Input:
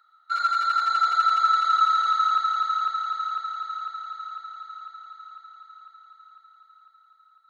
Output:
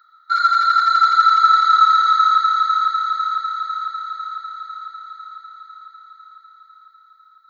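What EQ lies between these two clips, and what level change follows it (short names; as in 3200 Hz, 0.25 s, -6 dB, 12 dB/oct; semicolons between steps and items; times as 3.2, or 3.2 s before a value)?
fixed phaser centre 2700 Hz, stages 6; +8.5 dB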